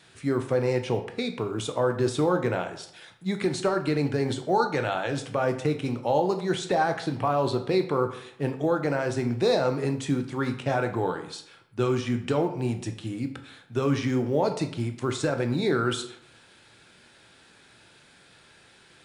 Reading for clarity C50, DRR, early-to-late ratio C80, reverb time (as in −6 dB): 11.0 dB, 6.5 dB, 13.5 dB, 0.70 s